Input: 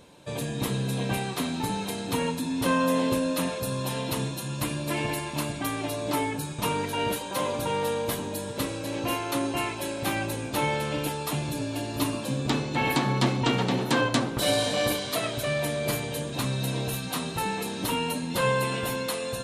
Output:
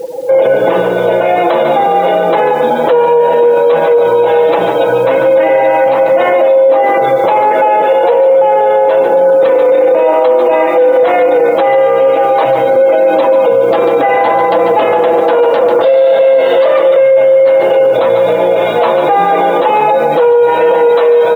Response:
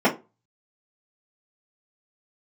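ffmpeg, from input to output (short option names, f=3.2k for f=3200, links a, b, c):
-filter_complex "[0:a]lowpass=2k,afftfilt=real='re*gte(hypot(re,im),0.00562)':imag='im*gte(hypot(re,im),0.00562)':win_size=1024:overlap=0.75,aecho=1:1:5.5:0.64,acompressor=threshold=-30dB:ratio=4,asetrate=40131,aresample=44100,highpass=f=530:t=q:w=4.9,acrusher=bits=10:mix=0:aa=0.000001,flanger=delay=5.8:depth=2.5:regen=65:speed=1.3:shape=sinusoidal,asplit=2[a][b];[b]aecho=0:1:144:0.335[c];[a][c]amix=inputs=2:normalize=0,alimiter=level_in=31.5dB:limit=-1dB:release=50:level=0:latency=1,volume=-1dB"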